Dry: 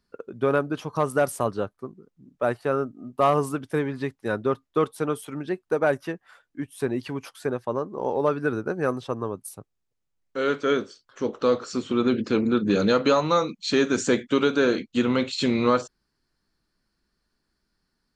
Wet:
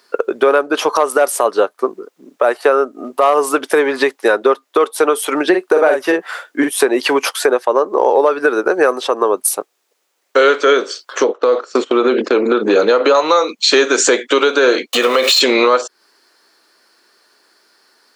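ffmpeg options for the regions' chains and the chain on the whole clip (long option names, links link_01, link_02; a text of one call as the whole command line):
ffmpeg -i in.wav -filter_complex "[0:a]asettb=1/sr,asplit=3[link_01][link_02][link_03];[link_01]atrim=end=5.494[link_04];[link_02]atrim=start=5.49:end=6.71,asetpts=PTS-STARTPTS,afade=type=in:duration=0.004:curve=qsin,afade=type=out:start_time=1.216:duration=0.004:curve=qsin,lowshelf=frequency=180:gain=11.5,asplit=2[link_05][link_06];[link_06]adelay=45,volume=-5dB[link_07];[link_05][link_07]amix=inputs=2:normalize=0,atrim=end_sample=53802[link_08];[link_03]atrim=start=6.706[link_09];[link_04][link_08]acrossfade=duration=0.004:curve1=hsin:curve2=qsin[link_10];[link_10][link_09]acrossfade=duration=0.004:curve1=qsin:curve2=hsin,asettb=1/sr,asplit=3[link_11][link_12][link_13];[link_11]atrim=end=11.244[link_14];[link_12]atrim=start=11.24:end=13.15,asetpts=PTS-STARTPTS,afade=type=in:duration=0.004:curve=qsin,afade=type=out:start_time=1.906:duration=0.004:curve=qsin,agate=range=-19dB:threshold=-35dB:ratio=16:release=100:detection=peak,highshelf=frequency=2400:gain=-9.5,acompressor=threshold=-23dB:ratio=4:attack=3.2:release=140:knee=1:detection=peak[link_15];[link_13]atrim=start=13.146[link_16];[link_14][link_15]acrossfade=duration=0.004:curve1=hsin:curve2=qsin[link_17];[link_17][link_16]acrossfade=duration=0.004:curve1=qsin:curve2=hsin,asettb=1/sr,asplit=3[link_18][link_19][link_20];[link_18]atrim=end=14.934[link_21];[link_19]atrim=start=14.93:end=15.41,asetpts=PTS-STARTPTS,afade=type=in:duration=0.004:curve=qsin,afade=type=out:start_time=0.476:duration=0.004:curve=qsin,aeval=exprs='val(0)+0.5*0.015*sgn(val(0))':channel_layout=same,aecho=1:1:1.7:0.5,atrim=end_sample=21168,acompressor=threshold=-28dB:ratio=4:attack=3.2:release=140:knee=1:detection=peak[link_22];[link_20]atrim=start=15.406[link_23];[link_21][link_22]acrossfade=duration=0.004:curve1=hsin:curve2=qsin[link_24];[link_24][link_23]acrossfade=duration=0.004:curve1=qsin:curve2=hsin,highpass=frequency=390:width=0.5412,highpass=frequency=390:width=1.3066,acompressor=threshold=-33dB:ratio=6,alimiter=level_in=25.5dB:limit=-1dB:release=50:level=0:latency=1,volume=-1dB" out.wav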